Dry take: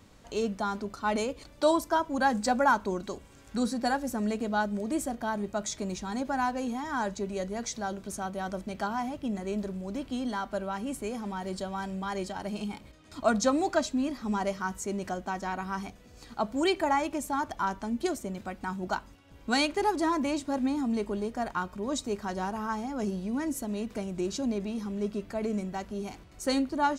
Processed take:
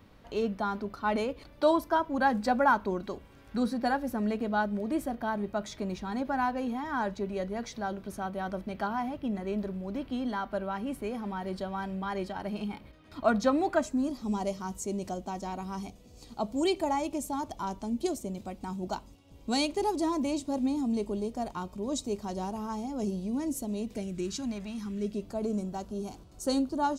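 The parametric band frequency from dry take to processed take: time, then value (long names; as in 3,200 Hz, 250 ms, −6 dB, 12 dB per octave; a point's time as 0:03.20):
parametric band −14.5 dB 0.94 octaves
0:13.66 7,400 Hz
0:14.19 1,600 Hz
0:23.85 1,600 Hz
0:24.63 310 Hz
0:25.31 2,000 Hz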